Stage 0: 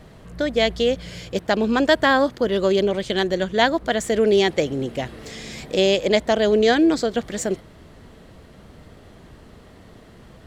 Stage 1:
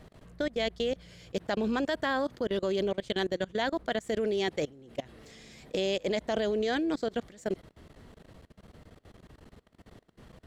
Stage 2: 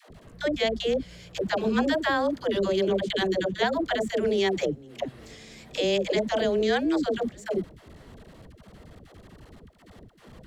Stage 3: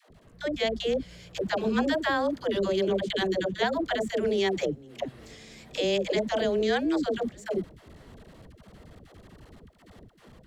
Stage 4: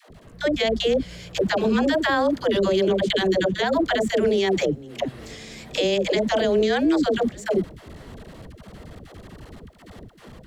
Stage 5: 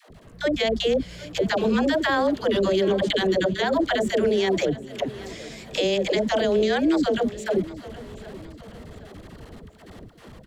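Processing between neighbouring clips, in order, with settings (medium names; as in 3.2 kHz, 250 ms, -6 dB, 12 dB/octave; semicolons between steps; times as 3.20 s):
level held to a coarse grid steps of 23 dB; trim -5.5 dB
phase dispersion lows, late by 106 ms, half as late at 440 Hz; trim +5 dB
level rider gain up to 5.5 dB; trim -7 dB
peak limiter -21.5 dBFS, peak gain reduction 7.5 dB; trim +8.5 dB
feedback delay 772 ms, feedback 44%, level -18 dB; trim -1 dB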